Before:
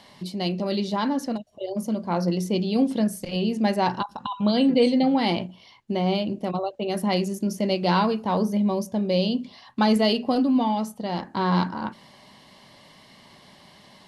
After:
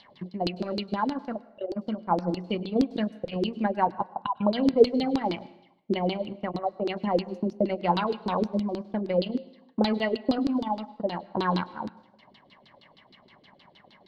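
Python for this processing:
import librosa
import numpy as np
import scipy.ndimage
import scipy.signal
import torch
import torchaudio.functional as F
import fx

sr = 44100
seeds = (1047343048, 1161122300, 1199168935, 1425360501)

y = fx.transient(x, sr, attack_db=7, sustain_db=-12)
y = fx.filter_lfo_lowpass(y, sr, shape='saw_down', hz=6.4, low_hz=300.0, high_hz=4500.0, q=4.5)
y = fx.rev_plate(y, sr, seeds[0], rt60_s=0.85, hf_ratio=0.8, predelay_ms=90, drr_db=19.0)
y = y * librosa.db_to_amplitude(-8.5)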